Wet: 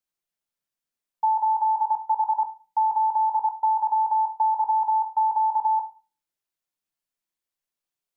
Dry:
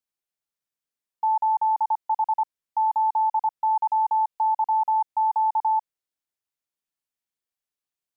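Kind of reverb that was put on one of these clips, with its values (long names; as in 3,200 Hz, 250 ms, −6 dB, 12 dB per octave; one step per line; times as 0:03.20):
rectangular room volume 220 cubic metres, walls furnished, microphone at 0.89 metres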